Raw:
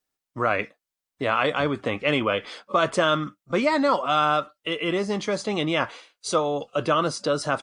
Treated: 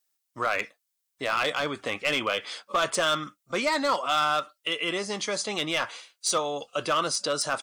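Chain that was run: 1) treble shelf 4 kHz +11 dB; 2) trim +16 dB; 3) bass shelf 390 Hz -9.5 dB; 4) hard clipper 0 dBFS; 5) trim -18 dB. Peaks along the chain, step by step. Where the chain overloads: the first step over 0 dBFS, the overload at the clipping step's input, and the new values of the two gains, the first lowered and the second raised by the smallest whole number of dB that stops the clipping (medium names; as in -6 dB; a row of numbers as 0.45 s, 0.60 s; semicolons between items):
-6.0 dBFS, +10.0 dBFS, +9.5 dBFS, 0.0 dBFS, -18.0 dBFS; step 2, 9.5 dB; step 2 +6 dB, step 5 -8 dB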